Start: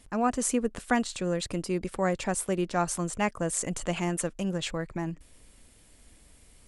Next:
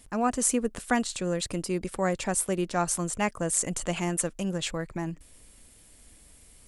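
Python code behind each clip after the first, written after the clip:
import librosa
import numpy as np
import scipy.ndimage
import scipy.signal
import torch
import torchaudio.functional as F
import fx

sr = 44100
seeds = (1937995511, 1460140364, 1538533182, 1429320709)

y = fx.high_shelf(x, sr, hz=7400.0, db=8.0)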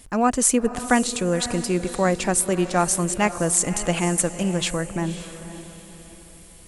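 y = fx.echo_diffused(x, sr, ms=542, feedback_pct=40, wet_db=-12.5)
y = F.gain(torch.from_numpy(y), 6.5).numpy()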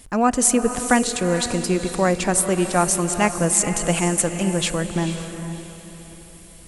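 y = fx.rev_gated(x, sr, seeds[0], gate_ms=480, shape='rising', drr_db=10.0)
y = F.gain(torch.from_numpy(y), 1.5).numpy()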